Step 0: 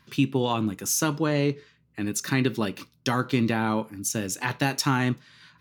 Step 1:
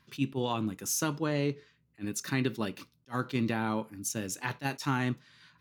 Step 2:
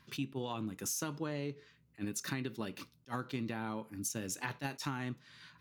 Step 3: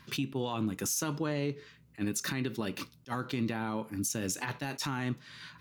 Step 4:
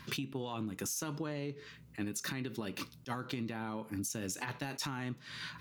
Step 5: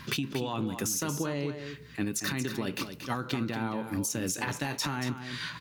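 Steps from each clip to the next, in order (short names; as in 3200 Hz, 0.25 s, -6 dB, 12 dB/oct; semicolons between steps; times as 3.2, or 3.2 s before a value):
attack slew limiter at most 410 dB/s; gain -6 dB
compressor, threshold -37 dBFS, peak gain reduction 12.5 dB; gain +2 dB
limiter -30.5 dBFS, peak gain reduction 9.5 dB; gain +8 dB
compressor 6:1, threshold -40 dBFS, peak gain reduction 12 dB; gain +4.5 dB
echo 0.231 s -9 dB; gain +6.5 dB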